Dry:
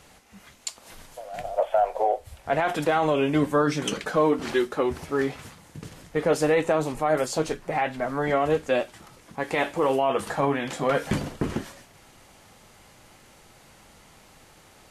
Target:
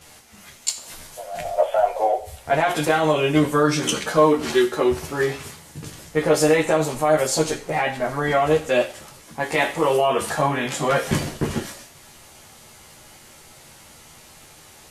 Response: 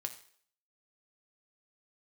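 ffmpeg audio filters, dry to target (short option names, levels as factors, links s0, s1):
-filter_complex "[0:a]asplit=2[s0][s1];[1:a]atrim=start_sample=2205,highshelf=f=3300:g=10.5,adelay=13[s2];[s1][s2]afir=irnorm=-1:irlink=0,volume=1.26[s3];[s0][s3]amix=inputs=2:normalize=0"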